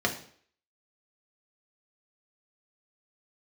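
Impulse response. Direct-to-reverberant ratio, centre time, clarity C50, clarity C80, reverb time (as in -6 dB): 0.5 dB, 13 ms, 10.5 dB, 14.5 dB, 0.55 s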